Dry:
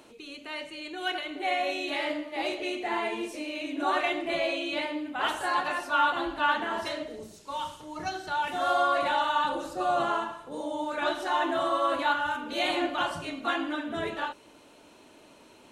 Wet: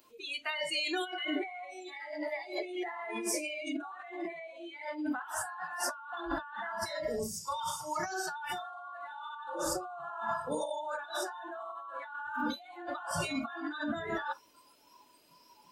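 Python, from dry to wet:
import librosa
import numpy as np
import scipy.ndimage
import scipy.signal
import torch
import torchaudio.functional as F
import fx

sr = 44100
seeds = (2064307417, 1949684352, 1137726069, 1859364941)

y = fx.high_shelf(x, sr, hz=2600.0, db=8.5)
y = fx.notch(y, sr, hz=800.0, q=15.0)
y = fx.over_compress(y, sr, threshold_db=-37.0, ratio=-1.0)
y = fx.highpass(y, sr, hz=fx.line((7.66, 170.0), (8.31, 470.0)), slope=6, at=(7.66, 8.31), fade=0.02)
y = fx.noise_reduce_blind(y, sr, reduce_db=22)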